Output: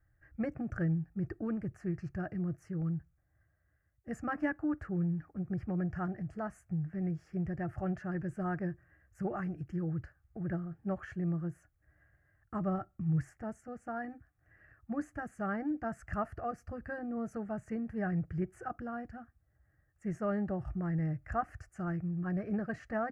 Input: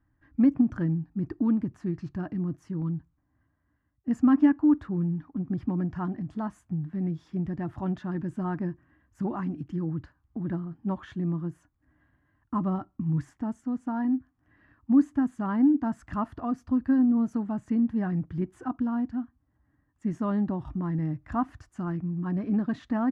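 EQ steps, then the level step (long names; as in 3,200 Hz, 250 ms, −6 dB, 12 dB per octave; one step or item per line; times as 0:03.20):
phaser with its sweep stopped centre 980 Hz, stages 6
+1.5 dB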